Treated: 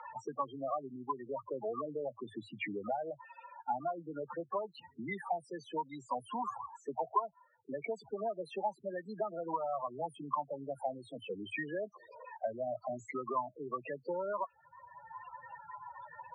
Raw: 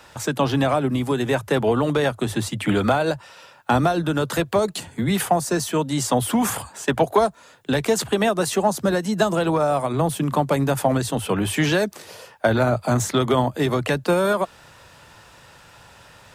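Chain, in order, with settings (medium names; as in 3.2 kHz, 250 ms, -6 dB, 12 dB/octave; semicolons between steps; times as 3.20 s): loudest bins only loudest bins 8; two resonant band-passes 1.5 kHz, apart 0.99 oct; three bands compressed up and down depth 70%; trim +1.5 dB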